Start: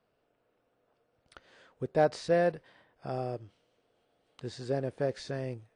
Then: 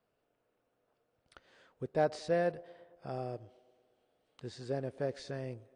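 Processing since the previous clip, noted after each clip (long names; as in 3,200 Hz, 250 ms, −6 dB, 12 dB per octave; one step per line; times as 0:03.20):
delay with a band-pass on its return 115 ms, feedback 65%, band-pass 510 Hz, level −21.5 dB
level −4.5 dB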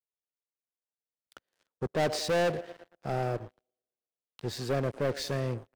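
leveller curve on the samples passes 5
multiband upward and downward expander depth 40%
level −6 dB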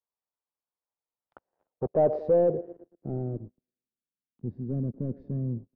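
low-pass filter sweep 1,000 Hz → 230 Hz, 0:01.22–0:03.57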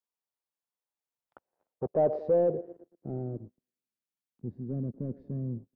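low-shelf EQ 63 Hz −7 dB
level −2.5 dB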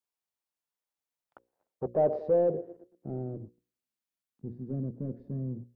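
mains-hum notches 60/120/180/240/300/360/420/480/540 Hz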